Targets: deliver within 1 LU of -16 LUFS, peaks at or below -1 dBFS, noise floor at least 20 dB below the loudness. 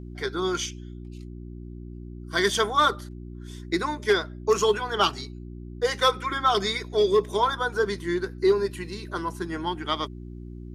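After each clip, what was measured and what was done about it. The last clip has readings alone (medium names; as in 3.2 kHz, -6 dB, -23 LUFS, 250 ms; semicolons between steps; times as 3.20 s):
hum 60 Hz; highest harmonic 360 Hz; hum level -37 dBFS; loudness -25.5 LUFS; peak level -8.5 dBFS; loudness target -16.0 LUFS
-> de-hum 60 Hz, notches 6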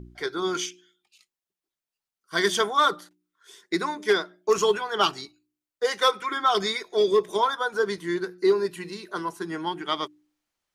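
hum not found; loudness -25.5 LUFS; peak level -8.5 dBFS; loudness target -16.0 LUFS
-> trim +9.5 dB; peak limiter -1 dBFS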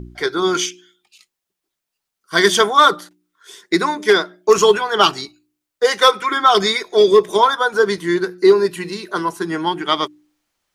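loudness -16.0 LUFS; peak level -1.0 dBFS; noise floor -81 dBFS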